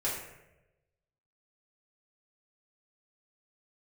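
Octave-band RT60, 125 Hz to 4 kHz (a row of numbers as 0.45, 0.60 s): 1.3, 1.0, 1.1, 0.80, 0.85, 0.60 s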